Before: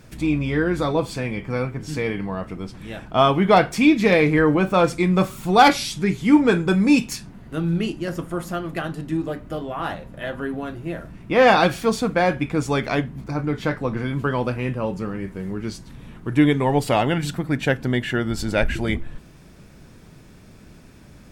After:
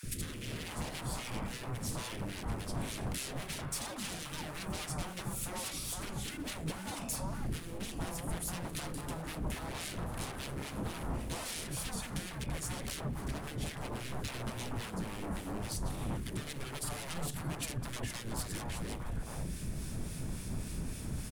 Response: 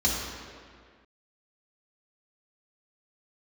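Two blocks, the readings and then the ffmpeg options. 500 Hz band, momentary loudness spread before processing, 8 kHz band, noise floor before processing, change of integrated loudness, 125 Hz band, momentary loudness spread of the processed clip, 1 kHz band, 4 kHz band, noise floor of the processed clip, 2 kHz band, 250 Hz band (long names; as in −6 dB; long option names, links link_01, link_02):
−23.5 dB, 14 LU, −2.0 dB, −46 dBFS, −18.5 dB, −13.5 dB, 3 LU, −21.5 dB, −12.0 dB, −44 dBFS, −19.0 dB, −21.0 dB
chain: -filter_complex "[0:a]asplit=2[link_01][link_02];[link_02]acrusher=bits=5:mode=log:mix=0:aa=0.000001,volume=-4dB[link_03];[link_01][link_03]amix=inputs=2:normalize=0,lowshelf=frequency=120:gain=8,acompressor=threshold=-24dB:ratio=5,asplit=2[link_04][link_05];[1:a]atrim=start_sample=2205[link_06];[link_05][link_06]afir=irnorm=-1:irlink=0,volume=-31.5dB[link_07];[link_04][link_07]amix=inputs=2:normalize=0,aeval=exprs='0.0282*(abs(mod(val(0)/0.0282+3,4)-2)-1)':channel_layout=same,equalizer=frequency=10000:width=1.2:gain=12.5,acrossover=split=250[link_08][link_09];[link_09]acompressor=threshold=-42dB:ratio=2[link_10];[link_08][link_10]amix=inputs=2:normalize=0,acrossover=split=460|1500[link_11][link_12][link_13];[link_11]adelay=30[link_14];[link_12]adelay=470[link_15];[link_14][link_15][link_13]amix=inputs=3:normalize=0,acrossover=split=1500[link_16][link_17];[link_16]aeval=exprs='val(0)*(1-0.5/2+0.5/2*cos(2*PI*3.6*n/s))':channel_layout=same[link_18];[link_17]aeval=exprs='val(0)*(1-0.5/2-0.5/2*cos(2*PI*3.6*n/s))':channel_layout=same[link_19];[link_18][link_19]amix=inputs=2:normalize=0,volume=2dB"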